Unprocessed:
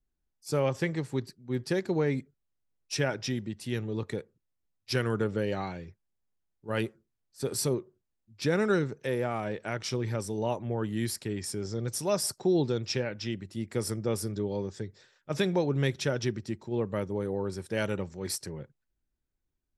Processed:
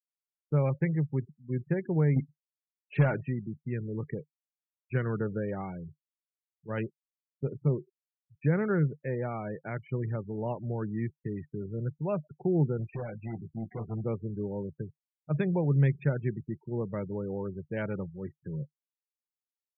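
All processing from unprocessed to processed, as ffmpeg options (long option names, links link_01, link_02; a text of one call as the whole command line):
ffmpeg -i in.wav -filter_complex "[0:a]asettb=1/sr,asplit=3[link_01][link_02][link_03];[link_01]atrim=end=2.164[link_04];[link_02]atrim=start=2.16:end=3.23,asetpts=PTS-STARTPTS,afade=type=in:duration=0.004:curve=qsin,afade=type=out:start_time=1.066:duration=0.004:curve=qsin,acontrast=87,asoftclip=type=hard:threshold=-20.5dB[link_05];[link_03]atrim=start=3.226[link_06];[link_04][link_05]acrossfade=duration=0.004:curve1=hsin:curve2=qsin[link_07];[link_07][link_06]acrossfade=duration=0.004:curve1=qsin:curve2=hsin,asettb=1/sr,asplit=3[link_08][link_09][link_10];[link_08]atrim=end=12.774[link_11];[link_09]atrim=start=12.77:end=14.04,asetpts=PTS-STARTPTS,afade=type=in:duration=0.004:curve=qsin,afade=type=out:start_time=1.266:duration=0.004:curve=qsin,volume=32.5dB,asoftclip=hard,volume=-32.5dB,equalizer=frequency=740:width=7.9:gain=9,asplit=2[link_12][link_13];[link_13]adelay=18,volume=-4.5dB[link_14];[link_12][link_14]amix=inputs=2:normalize=0,atrim=end_sample=56007[link_15];[link_10]atrim=start=14.036[link_16];[link_11][link_15]acrossfade=duration=0.004:curve1=hsin:curve2=qsin[link_17];[link_17][link_16]acrossfade=duration=0.004:curve1=qsin:curve2=hsin,lowpass=frequency=2500:width=0.5412,lowpass=frequency=2500:width=1.3066,afftfilt=real='re*gte(hypot(re,im),0.0158)':imag='im*gte(hypot(re,im),0.0158)':win_size=1024:overlap=0.75,equalizer=frequency=150:width=2.8:gain=12.5,volume=-4dB" out.wav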